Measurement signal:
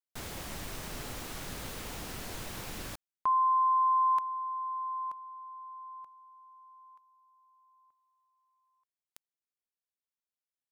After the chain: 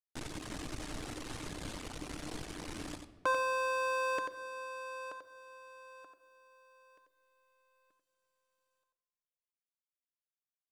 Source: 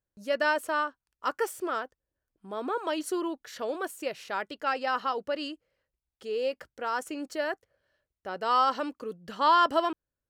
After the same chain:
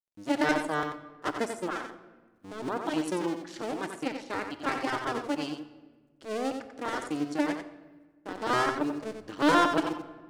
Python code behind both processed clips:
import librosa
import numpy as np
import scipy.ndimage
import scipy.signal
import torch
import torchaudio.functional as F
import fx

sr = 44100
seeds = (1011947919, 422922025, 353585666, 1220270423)

y = fx.cycle_switch(x, sr, every=2, mode='muted')
y = scipy.signal.sosfilt(scipy.signal.butter(4, 10000.0, 'lowpass', fs=sr, output='sos'), y)
y = fx.peak_eq(y, sr, hz=300.0, db=10.0, octaves=0.44)
y = fx.quant_companded(y, sr, bits=8)
y = fx.dereverb_blind(y, sr, rt60_s=0.67)
y = y + 10.0 ** (-7.0 / 20.0) * np.pad(y, (int(90 * sr / 1000.0), 0))[:len(y)]
y = fx.room_shoebox(y, sr, seeds[0], volume_m3=1100.0, walls='mixed', distance_m=0.47)